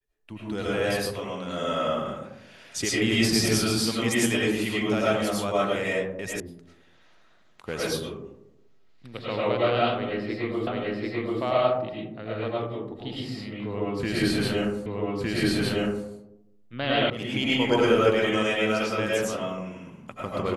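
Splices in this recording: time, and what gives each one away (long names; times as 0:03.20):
0:06.40: cut off before it has died away
0:10.67: the same again, the last 0.74 s
0:14.86: the same again, the last 1.21 s
0:17.10: cut off before it has died away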